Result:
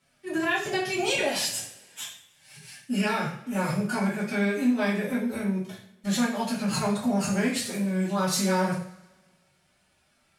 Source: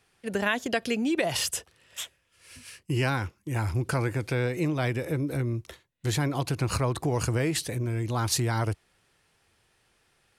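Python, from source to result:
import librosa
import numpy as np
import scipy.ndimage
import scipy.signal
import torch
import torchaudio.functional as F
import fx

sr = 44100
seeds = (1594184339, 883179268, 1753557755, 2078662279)

y = fx.pitch_keep_formants(x, sr, semitones=8.5)
y = fx.rev_double_slope(y, sr, seeds[0], early_s=0.48, late_s=1.5, knee_db=-19, drr_db=-5.5)
y = F.gain(torch.from_numpy(y), -5.5).numpy()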